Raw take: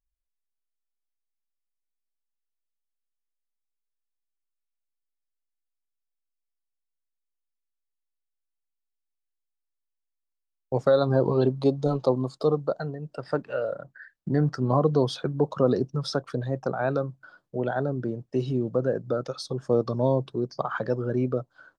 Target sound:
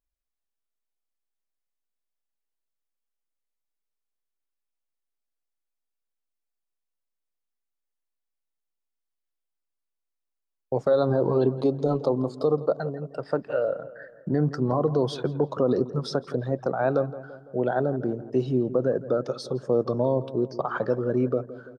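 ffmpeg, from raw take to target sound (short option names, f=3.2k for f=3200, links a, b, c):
-filter_complex "[0:a]equalizer=f=490:w=0.42:g=6.5,alimiter=limit=-10dB:level=0:latency=1:release=58,asplit=2[a][b];[b]adelay=168,lowpass=f=2k:p=1,volume=-15dB,asplit=2[c][d];[d]adelay=168,lowpass=f=2k:p=1,volume=0.54,asplit=2[e][f];[f]adelay=168,lowpass=f=2k:p=1,volume=0.54,asplit=2[g][h];[h]adelay=168,lowpass=f=2k:p=1,volume=0.54,asplit=2[i][j];[j]adelay=168,lowpass=f=2k:p=1,volume=0.54[k];[a][c][e][g][i][k]amix=inputs=6:normalize=0,volume=-3dB"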